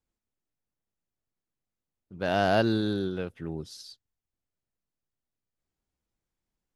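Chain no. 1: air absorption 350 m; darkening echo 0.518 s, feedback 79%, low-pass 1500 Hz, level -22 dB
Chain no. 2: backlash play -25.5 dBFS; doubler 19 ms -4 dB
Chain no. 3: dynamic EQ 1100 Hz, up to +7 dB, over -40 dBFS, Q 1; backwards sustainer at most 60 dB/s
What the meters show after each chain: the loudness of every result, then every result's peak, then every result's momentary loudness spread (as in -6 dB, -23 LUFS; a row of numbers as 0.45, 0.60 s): -29.5, -26.5, -25.5 LUFS; -14.5, -9.5, -7.0 dBFS; 14, 18, 18 LU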